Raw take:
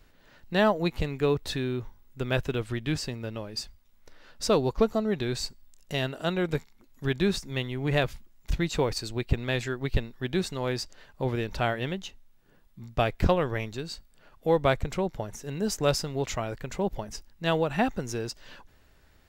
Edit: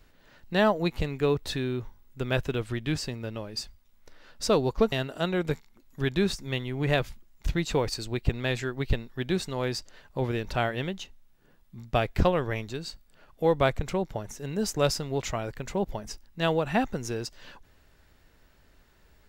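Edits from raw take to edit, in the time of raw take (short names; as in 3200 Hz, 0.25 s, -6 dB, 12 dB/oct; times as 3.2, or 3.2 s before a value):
4.92–5.96 cut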